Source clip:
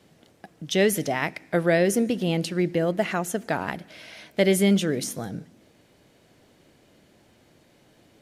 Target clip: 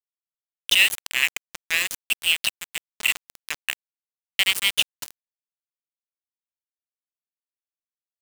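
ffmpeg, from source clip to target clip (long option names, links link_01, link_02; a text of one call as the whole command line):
ffmpeg -i in.wav -af "highpass=frequency=2700:width_type=q:width=6.6,afreqshift=-13,aeval=exprs='val(0)*gte(abs(val(0)),0.0891)':channel_layout=same,volume=3.5dB" out.wav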